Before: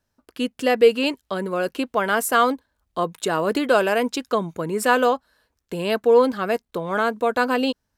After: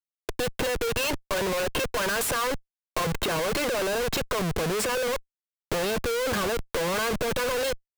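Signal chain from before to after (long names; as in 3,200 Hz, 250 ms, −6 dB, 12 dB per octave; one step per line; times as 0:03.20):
low-pass that shuts in the quiet parts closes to 990 Hz, open at −18 dBFS
downward compressor 2.5 to 1, threshold −19 dBFS, peak gain reduction 7 dB
comb filter 1.9 ms, depth 82%
brickwall limiter −15.5 dBFS, peak gain reduction 10 dB
0:00.64–0:03.05: low-shelf EQ 370 Hz −11 dB
comparator with hysteresis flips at −40.5 dBFS
multiband upward and downward compressor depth 40%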